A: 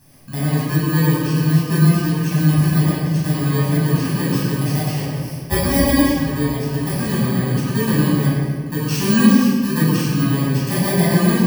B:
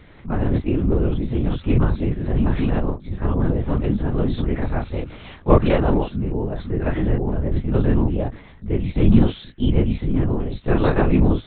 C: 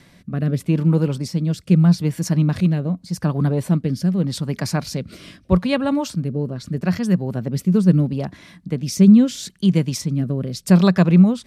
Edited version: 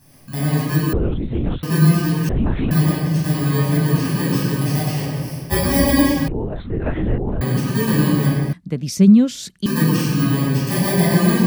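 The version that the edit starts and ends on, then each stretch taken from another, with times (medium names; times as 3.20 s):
A
0.93–1.63 s: from B
2.29–2.71 s: from B
6.28–7.41 s: from B
8.53–9.66 s: from C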